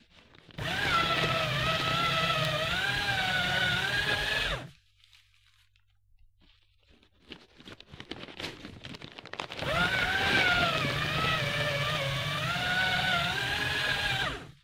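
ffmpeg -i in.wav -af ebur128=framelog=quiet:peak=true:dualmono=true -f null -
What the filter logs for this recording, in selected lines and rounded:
Integrated loudness:
  I:         -24.8 LUFS
  Threshold: -36.5 LUFS
Loudness range:
  LRA:        17.9 LU
  Threshold: -46.8 LUFS
  LRA low:   -42.1 LUFS
  LRA high:  -24.2 LUFS
True peak:
  Peak:      -13.2 dBFS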